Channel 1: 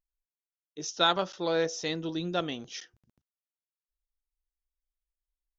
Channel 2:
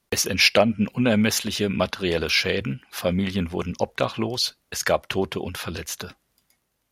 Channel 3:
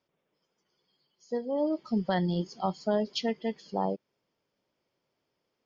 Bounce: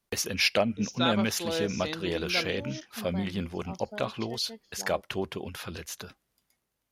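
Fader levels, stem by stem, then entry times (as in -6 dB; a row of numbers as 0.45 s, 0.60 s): -4.0 dB, -7.5 dB, -13.5 dB; 0.00 s, 0.00 s, 1.05 s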